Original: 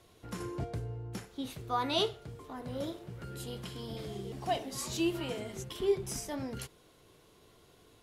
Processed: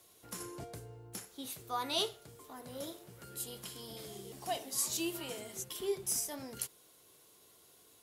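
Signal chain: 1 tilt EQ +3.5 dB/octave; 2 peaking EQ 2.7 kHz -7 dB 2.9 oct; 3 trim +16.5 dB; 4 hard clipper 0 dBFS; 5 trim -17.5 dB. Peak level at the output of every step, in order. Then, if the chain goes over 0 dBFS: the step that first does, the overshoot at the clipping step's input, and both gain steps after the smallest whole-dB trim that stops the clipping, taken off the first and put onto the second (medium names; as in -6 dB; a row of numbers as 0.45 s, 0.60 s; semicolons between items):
-13.0 dBFS, -18.0 dBFS, -1.5 dBFS, -1.5 dBFS, -19.0 dBFS; nothing clips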